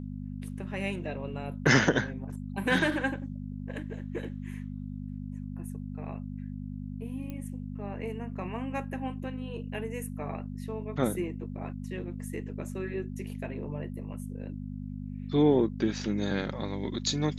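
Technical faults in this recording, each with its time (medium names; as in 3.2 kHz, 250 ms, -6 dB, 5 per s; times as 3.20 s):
hum 50 Hz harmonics 5 -38 dBFS
7.30 s: pop -26 dBFS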